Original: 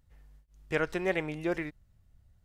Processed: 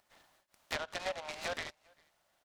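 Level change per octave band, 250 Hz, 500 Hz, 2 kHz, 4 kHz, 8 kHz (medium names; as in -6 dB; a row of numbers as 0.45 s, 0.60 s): -19.5 dB, -9.5 dB, -5.5 dB, +5.5 dB, +7.0 dB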